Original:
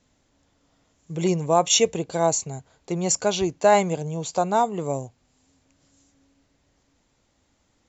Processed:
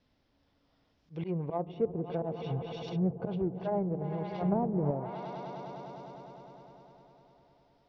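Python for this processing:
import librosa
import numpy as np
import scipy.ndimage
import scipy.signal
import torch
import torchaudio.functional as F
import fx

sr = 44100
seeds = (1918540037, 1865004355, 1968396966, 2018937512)

p1 = fx.auto_swell(x, sr, attack_ms=123.0)
p2 = scipy.signal.sosfilt(scipy.signal.cheby1(5, 1.0, 5300.0, 'lowpass', fs=sr, output='sos'), p1)
p3 = fx.bass_treble(p2, sr, bass_db=10, treble_db=12, at=(2.5, 3.38), fade=0.02)
p4 = p3 + fx.echo_swell(p3, sr, ms=101, loudest=5, wet_db=-17.5, dry=0)
p5 = fx.env_lowpass_down(p4, sr, base_hz=510.0, full_db=-20.0)
p6 = fx.low_shelf(p5, sr, hz=260.0, db=11.5, at=(4.41, 4.91))
p7 = 10.0 ** (-28.5 / 20.0) * np.tanh(p6 / 10.0 ** (-28.5 / 20.0))
p8 = p6 + (p7 * 10.0 ** (-11.0 / 20.0))
p9 = fx.env_lowpass_down(p8, sr, base_hz=1800.0, full_db=-21.0)
y = p9 * 10.0 ** (-8.0 / 20.0)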